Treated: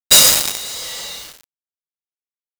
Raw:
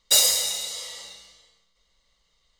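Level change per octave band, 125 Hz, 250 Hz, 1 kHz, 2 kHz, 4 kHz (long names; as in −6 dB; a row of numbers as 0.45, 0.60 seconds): can't be measured, +19.5 dB, +12.5 dB, +12.0 dB, +8.0 dB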